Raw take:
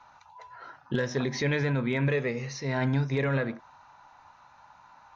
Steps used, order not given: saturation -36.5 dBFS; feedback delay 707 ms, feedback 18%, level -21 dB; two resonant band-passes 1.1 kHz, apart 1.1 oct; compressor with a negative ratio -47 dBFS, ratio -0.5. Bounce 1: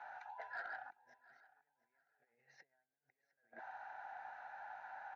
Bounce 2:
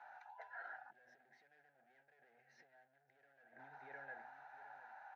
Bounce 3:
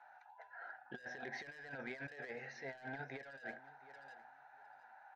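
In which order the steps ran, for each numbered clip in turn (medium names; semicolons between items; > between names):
compressor with a negative ratio > two resonant band-passes > saturation > feedback delay; feedback delay > saturation > compressor with a negative ratio > two resonant band-passes; two resonant band-passes > saturation > feedback delay > compressor with a negative ratio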